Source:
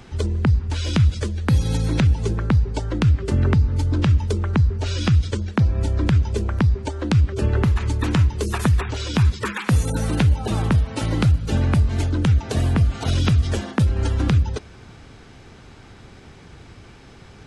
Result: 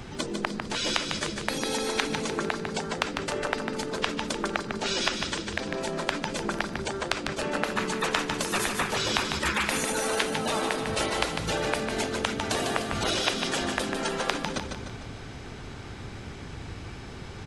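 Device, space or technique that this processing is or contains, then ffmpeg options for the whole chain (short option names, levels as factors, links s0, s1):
parallel distortion: -filter_complex "[0:a]asettb=1/sr,asplit=3[s0][s1][s2];[s0]atrim=end=11.164[s3];[s1]atrim=start=11.16:end=12.91,asetpts=PTS-STARTPTS,afade=t=in:d=0.004:c=qsin,afade=t=out:st=1.746:d=0.004:c=qsin,highpass=f=220:p=1[s4];[s2]atrim=start=12.906[s5];[s3][s4]acrossfade=d=0.004:c1=hsin:c2=qsin[s6];[s6][s5]acrossfade=d=0.004:c1=qsin:c2=hsin,afftfilt=real='re*lt(hypot(re,im),0.2)':imag='im*lt(hypot(re,im),0.2)':win_size=1024:overlap=0.75,asplit=2[s7][s8];[s8]asoftclip=type=hard:threshold=0.106,volume=0.422[s9];[s7][s9]amix=inputs=2:normalize=0,aecho=1:1:150|300|450|600|750|900:0.501|0.251|0.125|0.0626|0.0313|0.0157"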